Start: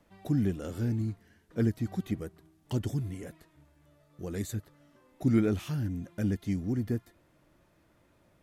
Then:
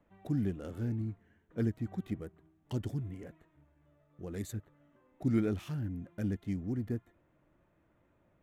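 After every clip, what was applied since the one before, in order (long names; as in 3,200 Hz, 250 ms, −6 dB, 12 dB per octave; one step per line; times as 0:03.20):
adaptive Wiener filter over 9 samples
level −4.5 dB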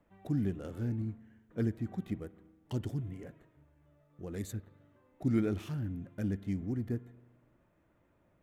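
spring reverb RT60 1.3 s, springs 41 ms, chirp 70 ms, DRR 18 dB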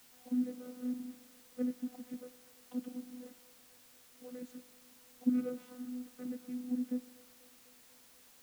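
channel vocoder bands 16, saw 249 Hz
background noise white −59 dBFS
delay with a band-pass on its return 245 ms, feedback 70%, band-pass 930 Hz, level −20 dB
level −2.5 dB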